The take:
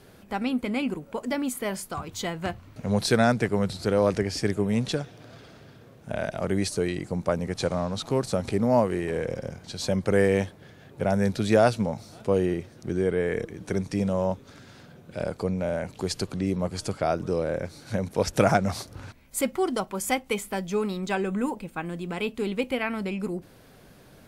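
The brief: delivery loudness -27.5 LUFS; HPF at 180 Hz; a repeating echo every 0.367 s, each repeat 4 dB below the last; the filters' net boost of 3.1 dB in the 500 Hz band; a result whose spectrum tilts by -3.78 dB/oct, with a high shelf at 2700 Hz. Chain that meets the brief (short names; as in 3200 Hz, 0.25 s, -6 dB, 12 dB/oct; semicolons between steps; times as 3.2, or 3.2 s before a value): HPF 180 Hz; bell 500 Hz +3.5 dB; high shelf 2700 Hz +8 dB; feedback echo 0.367 s, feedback 63%, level -4 dB; gain -4 dB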